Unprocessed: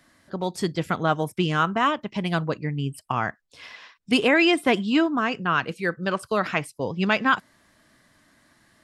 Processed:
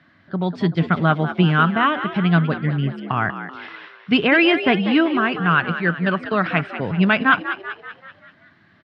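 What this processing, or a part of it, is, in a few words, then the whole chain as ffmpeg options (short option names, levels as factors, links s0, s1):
frequency-shifting delay pedal into a guitar cabinet: -filter_complex "[0:a]asplit=7[s0][s1][s2][s3][s4][s5][s6];[s1]adelay=192,afreqshift=68,volume=0.282[s7];[s2]adelay=384,afreqshift=136,volume=0.15[s8];[s3]adelay=576,afreqshift=204,volume=0.0794[s9];[s4]adelay=768,afreqshift=272,volume=0.0422[s10];[s5]adelay=960,afreqshift=340,volume=0.0221[s11];[s6]adelay=1152,afreqshift=408,volume=0.0117[s12];[s0][s7][s8][s9][s10][s11][s12]amix=inputs=7:normalize=0,highpass=86,equalizer=f=98:t=q:w=4:g=8,equalizer=f=170:t=q:w=4:g=8,equalizer=f=500:t=q:w=4:g=-5,equalizer=f=930:t=q:w=4:g=-3,equalizer=f=1500:t=q:w=4:g=4,lowpass=f=3600:w=0.5412,lowpass=f=3600:w=1.3066,volume=1.5"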